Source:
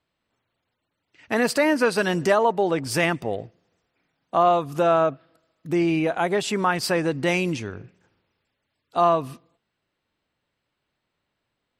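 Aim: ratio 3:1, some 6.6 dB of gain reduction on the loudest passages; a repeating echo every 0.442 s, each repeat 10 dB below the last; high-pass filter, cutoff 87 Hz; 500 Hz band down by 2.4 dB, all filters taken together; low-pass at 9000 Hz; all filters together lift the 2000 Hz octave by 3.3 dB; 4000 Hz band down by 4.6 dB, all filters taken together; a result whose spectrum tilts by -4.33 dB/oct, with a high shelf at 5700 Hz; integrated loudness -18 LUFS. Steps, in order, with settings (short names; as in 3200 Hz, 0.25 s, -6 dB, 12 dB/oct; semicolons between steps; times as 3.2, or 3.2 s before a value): HPF 87 Hz; LPF 9000 Hz; bell 500 Hz -3.5 dB; bell 2000 Hz +6.5 dB; bell 4000 Hz -8 dB; high shelf 5700 Hz -3.5 dB; compressor 3:1, threshold -24 dBFS; feedback echo 0.442 s, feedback 32%, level -10 dB; gain +10 dB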